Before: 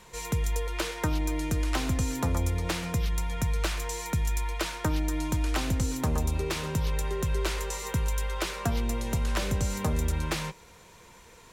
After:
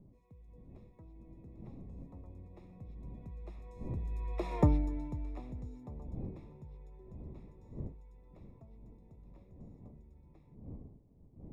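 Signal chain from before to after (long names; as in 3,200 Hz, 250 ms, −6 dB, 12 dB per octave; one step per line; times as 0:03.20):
source passing by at 0:04.58, 16 m/s, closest 1.2 metres
wind on the microphone 190 Hz −57 dBFS
moving average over 29 samples
level +6.5 dB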